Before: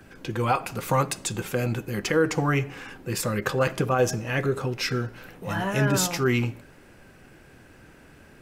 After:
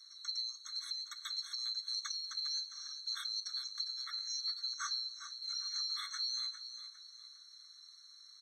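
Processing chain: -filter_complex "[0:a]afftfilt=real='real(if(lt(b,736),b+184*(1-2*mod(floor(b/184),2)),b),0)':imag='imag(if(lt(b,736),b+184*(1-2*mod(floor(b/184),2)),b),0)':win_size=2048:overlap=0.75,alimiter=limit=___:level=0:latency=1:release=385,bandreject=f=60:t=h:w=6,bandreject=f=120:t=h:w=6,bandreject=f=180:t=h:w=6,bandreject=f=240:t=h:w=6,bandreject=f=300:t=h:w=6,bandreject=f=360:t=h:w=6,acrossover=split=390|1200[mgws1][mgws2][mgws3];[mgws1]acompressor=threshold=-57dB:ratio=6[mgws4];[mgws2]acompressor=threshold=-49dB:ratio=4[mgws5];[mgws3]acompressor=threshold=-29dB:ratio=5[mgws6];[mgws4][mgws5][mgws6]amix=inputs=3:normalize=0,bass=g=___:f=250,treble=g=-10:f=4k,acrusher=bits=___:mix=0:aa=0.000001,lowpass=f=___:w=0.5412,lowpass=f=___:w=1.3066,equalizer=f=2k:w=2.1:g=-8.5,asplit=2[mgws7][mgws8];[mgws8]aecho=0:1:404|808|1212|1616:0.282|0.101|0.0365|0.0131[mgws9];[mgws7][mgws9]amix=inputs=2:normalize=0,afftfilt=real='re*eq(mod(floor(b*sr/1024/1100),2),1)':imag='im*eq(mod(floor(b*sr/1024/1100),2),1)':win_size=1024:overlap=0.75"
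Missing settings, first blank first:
-14.5dB, -11, 10, 9.5k, 9.5k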